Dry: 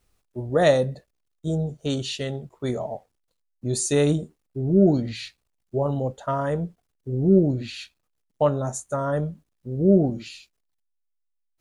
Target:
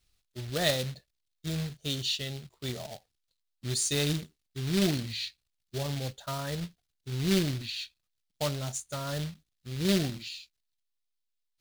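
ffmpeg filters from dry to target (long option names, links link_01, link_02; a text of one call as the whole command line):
ffmpeg -i in.wav -af "acrusher=bits=3:mode=log:mix=0:aa=0.000001,equalizer=frequency=250:width_type=o:width=1:gain=-5,equalizer=frequency=500:width_type=o:width=1:gain=-7,equalizer=frequency=1000:width_type=o:width=1:gain=-6,equalizer=frequency=4000:width_type=o:width=1:gain=8,volume=-5dB" out.wav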